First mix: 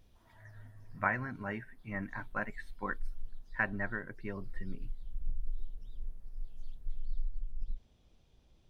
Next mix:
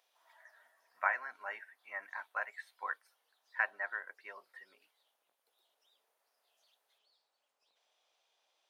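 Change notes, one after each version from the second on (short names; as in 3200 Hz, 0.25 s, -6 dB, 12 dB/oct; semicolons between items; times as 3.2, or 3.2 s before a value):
master: add HPF 650 Hz 24 dB/oct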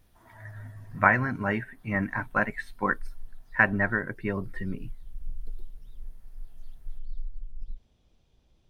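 speech +11.0 dB; master: remove HPF 650 Hz 24 dB/oct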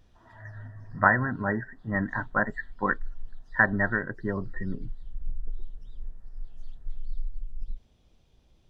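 speech: add brick-wall FIR low-pass 2000 Hz; background +3.0 dB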